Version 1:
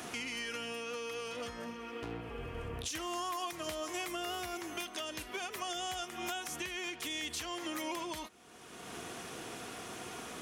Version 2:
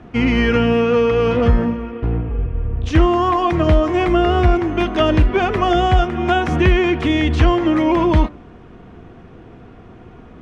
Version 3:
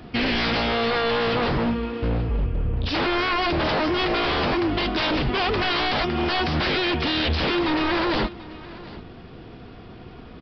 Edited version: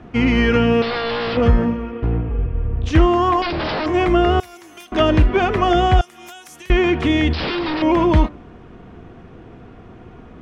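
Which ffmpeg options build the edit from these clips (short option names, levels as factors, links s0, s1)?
-filter_complex "[2:a]asplit=3[s0][s1][s2];[0:a]asplit=2[s3][s4];[1:a]asplit=6[s5][s6][s7][s8][s9][s10];[s5]atrim=end=0.822[s11];[s0]atrim=start=0.818:end=1.372[s12];[s6]atrim=start=1.368:end=3.422[s13];[s1]atrim=start=3.418:end=3.862[s14];[s7]atrim=start=3.858:end=4.402[s15];[s3]atrim=start=4.398:end=4.922[s16];[s8]atrim=start=4.918:end=6.012[s17];[s4]atrim=start=6.008:end=6.702[s18];[s9]atrim=start=6.698:end=7.332[s19];[s2]atrim=start=7.328:end=7.822[s20];[s10]atrim=start=7.818[s21];[s11][s12]acrossfade=d=0.004:c1=hsin:c2=hsin[s22];[s22][s13]acrossfade=d=0.004:c1=hsin:c2=hsin[s23];[s23][s14]acrossfade=d=0.004:c1=hsin:c2=hsin[s24];[s24][s15]acrossfade=d=0.004:c1=hsin:c2=hsin[s25];[s25][s16]acrossfade=d=0.004:c1=hsin:c2=hsin[s26];[s26][s17]acrossfade=d=0.004:c1=hsin:c2=hsin[s27];[s27][s18]acrossfade=d=0.004:c1=hsin:c2=hsin[s28];[s28][s19]acrossfade=d=0.004:c1=hsin:c2=hsin[s29];[s29][s20]acrossfade=d=0.004:c1=hsin:c2=hsin[s30];[s30][s21]acrossfade=d=0.004:c1=hsin:c2=hsin"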